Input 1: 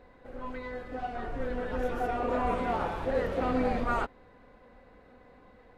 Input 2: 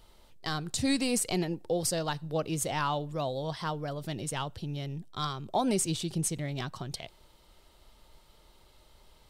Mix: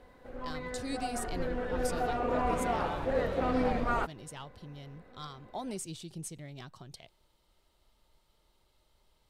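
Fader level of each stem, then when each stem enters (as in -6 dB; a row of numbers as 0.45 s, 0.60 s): -1.0 dB, -11.0 dB; 0.00 s, 0.00 s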